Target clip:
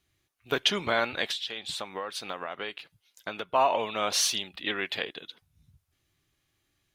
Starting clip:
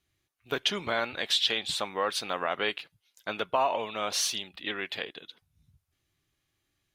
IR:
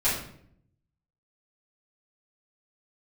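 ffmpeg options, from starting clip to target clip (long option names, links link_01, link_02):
-filter_complex "[0:a]asplit=3[link_01][link_02][link_03];[link_01]afade=type=out:start_time=1.3:duration=0.02[link_04];[link_02]acompressor=threshold=-35dB:ratio=6,afade=type=in:start_time=1.3:duration=0.02,afade=type=out:start_time=3.54:duration=0.02[link_05];[link_03]afade=type=in:start_time=3.54:duration=0.02[link_06];[link_04][link_05][link_06]amix=inputs=3:normalize=0,volume=3dB"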